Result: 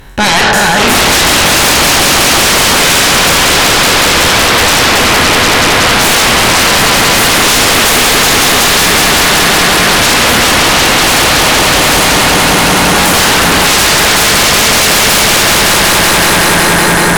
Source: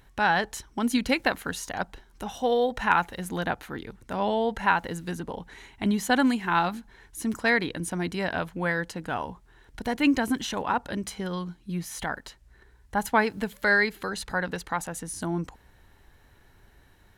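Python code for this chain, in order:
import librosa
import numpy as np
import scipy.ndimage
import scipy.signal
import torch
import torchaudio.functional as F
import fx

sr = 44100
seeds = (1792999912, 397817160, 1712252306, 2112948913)

y = fx.spec_trails(x, sr, decay_s=1.24)
y = fx.echo_swell(y, sr, ms=187, loudest=5, wet_db=-3.0)
y = fx.fold_sine(y, sr, drive_db=20, ceiling_db=-2.0)
y = y * librosa.db_to_amplitude(-2.5)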